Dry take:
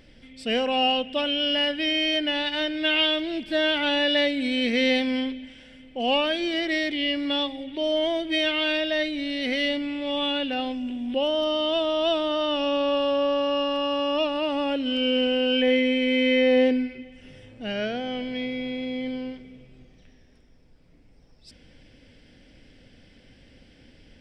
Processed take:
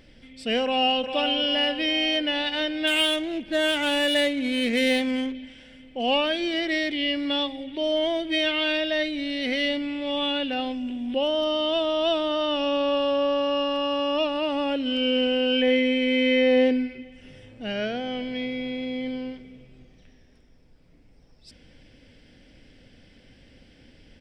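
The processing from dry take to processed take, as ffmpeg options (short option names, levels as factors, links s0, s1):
-filter_complex "[0:a]asplit=2[s0][s1];[s1]afade=t=in:st=0.63:d=0.01,afade=t=out:st=1.14:d=0.01,aecho=0:1:400|800|1200|1600|2000|2400|2800:0.446684|0.245676|0.135122|0.074317|0.0408743|0.0224809|0.0123645[s2];[s0][s2]amix=inputs=2:normalize=0,asettb=1/sr,asplit=3[s3][s4][s5];[s3]atrim=end=2.874[s6];[s4]atrim=start=2.87:end=5.35,asetpts=PTS-STARTPTS,afade=t=in:d=0.004:c=qsin,afade=t=out:st=2.476:d=0.004:c=qsin,adynamicsmooth=sensitivity=4:basefreq=2500[s7];[s5]atrim=start=5.346[s8];[s6][s7]acrossfade=d=0.004:c1=hsin:c2=qsin[s9];[s9][s8]acrossfade=d=0.004:c1=qsin:c2=hsin"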